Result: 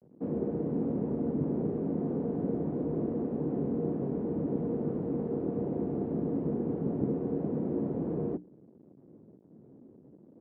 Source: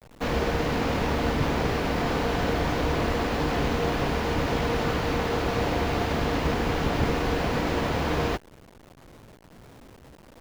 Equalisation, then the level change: Butterworth band-pass 250 Hz, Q 1; hum notches 60/120/180/240/300 Hz; 0.0 dB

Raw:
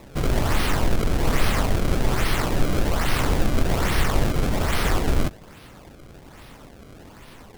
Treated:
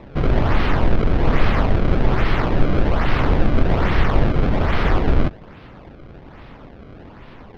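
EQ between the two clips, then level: distance through air 280 m; peaking EQ 11 kHz -3.5 dB 1.6 oct; +5.0 dB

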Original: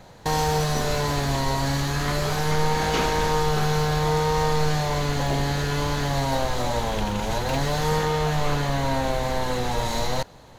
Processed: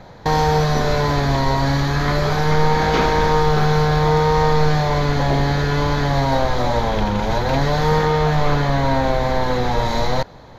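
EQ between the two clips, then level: boxcar filter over 5 samples; peaking EQ 2.8 kHz -8 dB 0.22 oct; +6.5 dB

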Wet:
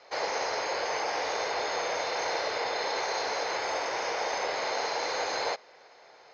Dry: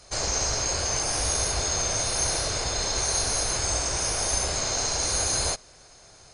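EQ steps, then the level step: distance through air 180 m; cabinet simulation 430–5900 Hz, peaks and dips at 480 Hz +7 dB, 870 Hz +7 dB, 2 kHz +7 dB; 0.0 dB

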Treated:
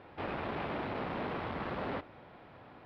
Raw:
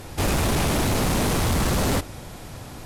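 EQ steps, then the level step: boxcar filter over 6 samples; high-pass 540 Hz 6 dB/octave; distance through air 400 m; -7.0 dB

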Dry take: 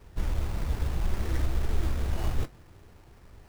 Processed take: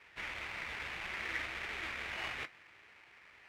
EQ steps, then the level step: band-pass filter 2.2 kHz, Q 3; +11.5 dB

